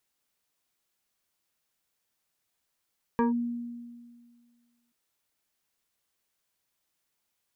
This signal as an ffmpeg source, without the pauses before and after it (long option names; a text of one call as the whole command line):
ffmpeg -f lavfi -i "aevalsrc='0.1*pow(10,-3*t/1.87)*sin(2*PI*238*t+1.3*clip(1-t/0.14,0,1)*sin(2*PI*2.95*238*t))':duration=1.73:sample_rate=44100" out.wav